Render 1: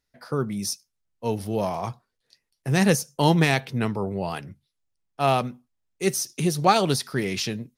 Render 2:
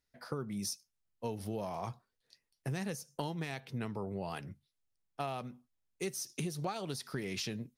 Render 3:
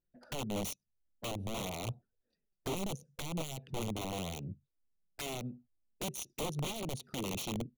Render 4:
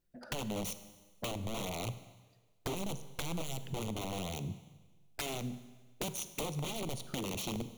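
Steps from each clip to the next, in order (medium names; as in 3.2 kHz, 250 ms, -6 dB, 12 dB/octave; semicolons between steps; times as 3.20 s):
compression 12:1, threshold -29 dBFS, peak gain reduction 17.5 dB; trim -5 dB
local Wiener filter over 41 samples; integer overflow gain 34.5 dB; touch-sensitive flanger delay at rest 5.8 ms, full sweep at -42 dBFS; trim +5 dB
compression, threshold -43 dBFS, peak gain reduction 9.5 dB; Schroeder reverb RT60 1.3 s, combs from 33 ms, DRR 12 dB; trim +7.5 dB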